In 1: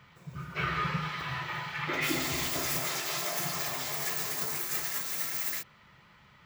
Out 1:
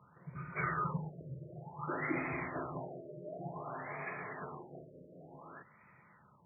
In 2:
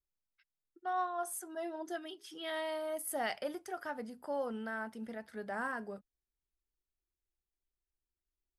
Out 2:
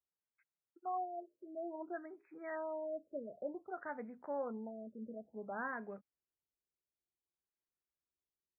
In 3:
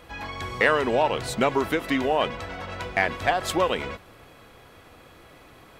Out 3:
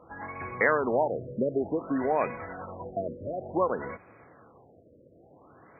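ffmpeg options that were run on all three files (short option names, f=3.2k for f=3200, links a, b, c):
-af "highpass=110,lowpass=3.3k,afftfilt=real='re*lt(b*sr/1024,620*pow(2600/620,0.5+0.5*sin(2*PI*0.55*pts/sr)))':imag='im*lt(b*sr/1024,620*pow(2600/620,0.5+0.5*sin(2*PI*0.55*pts/sr)))':win_size=1024:overlap=0.75,volume=-3dB"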